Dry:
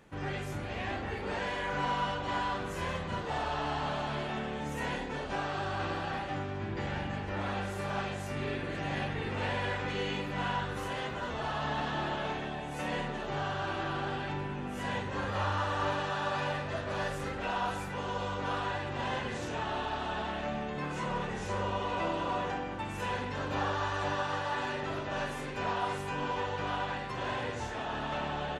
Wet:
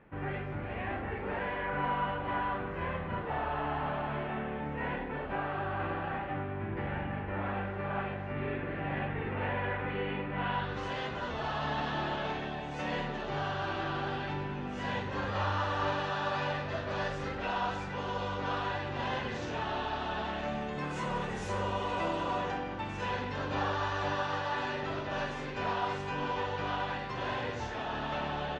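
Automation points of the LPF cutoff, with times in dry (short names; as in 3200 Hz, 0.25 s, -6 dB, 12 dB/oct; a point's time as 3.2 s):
LPF 24 dB/oct
10.31 s 2500 Hz
10.88 s 5900 Hz
20.17 s 5900 Hz
21.17 s 11000 Hz
21.95 s 11000 Hz
22.63 s 6000 Hz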